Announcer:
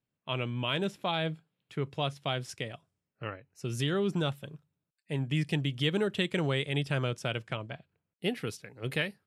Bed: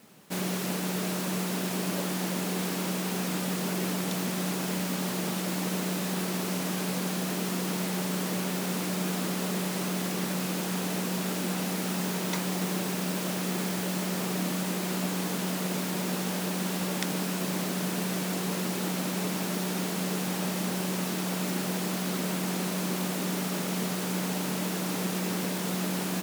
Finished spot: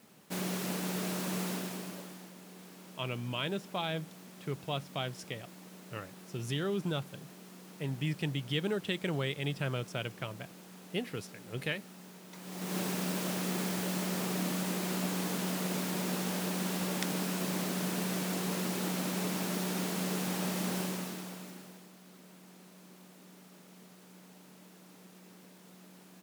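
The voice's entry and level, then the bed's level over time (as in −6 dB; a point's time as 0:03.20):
2.70 s, −4.0 dB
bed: 0:01.49 −4.5 dB
0:02.33 −21 dB
0:12.30 −21 dB
0:12.78 −3.5 dB
0:20.80 −3.5 dB
0:21.92 −25 dB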